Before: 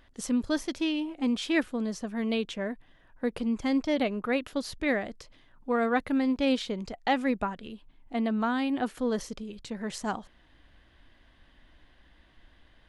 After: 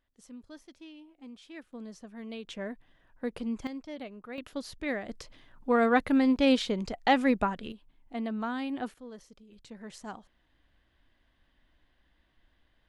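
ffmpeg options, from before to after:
ffmpeg -i in.wav -af "asetnsamples=nb_out_samples=441:pad=0,asendcmd='1.73 volume volume -12dB;2.47 volume volume -4.5dB;3.67 volume volume -14dB;4.38 volume volume -5.5dB;5.09 volume volume 2.5dB;7.72 volume volume -5.5dB;8.94 volume volume -17dB;9.52 volume volume -10dB',volume=-20dB" out.wav

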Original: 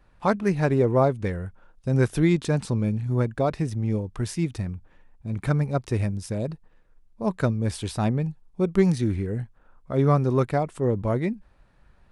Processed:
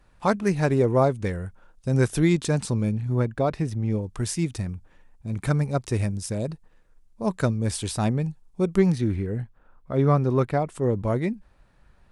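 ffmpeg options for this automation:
ffmpeg -i in.wav -af "asetnsamples=nb_out_samples=441:pad=0,asendcmd='2.91 equalizer g -1.5;4.03 equalizer g 7.5;8.78 equalizer g -4;10.69 equalizer g 3.5',equalizer=frequency=8200:width_type=o:width=1.5:gain=7" out.wav

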